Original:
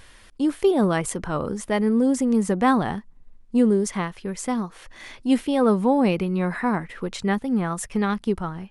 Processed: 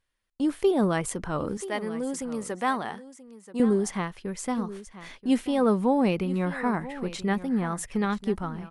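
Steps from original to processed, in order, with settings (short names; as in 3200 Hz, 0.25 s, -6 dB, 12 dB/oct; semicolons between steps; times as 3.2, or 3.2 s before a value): gate -41 dBFS, range -28 dB; 1.57–3.6 HPF 680 Hz 6 dB/oct; echo 0.982 s -15.5 dB; gain -3.5 dB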